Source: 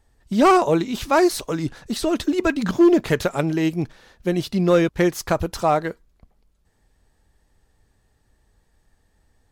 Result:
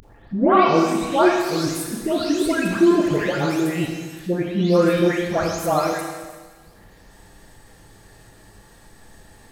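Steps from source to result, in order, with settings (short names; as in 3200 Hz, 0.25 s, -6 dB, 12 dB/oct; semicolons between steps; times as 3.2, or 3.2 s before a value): spectral delay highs late, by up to 0.455 s; low shelf 61 Hz -10.5 dB; upward compressor, threshold -33 dBFS; Schroeder reverb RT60 1.5 s, combs from 27 ms, DRR 2 dB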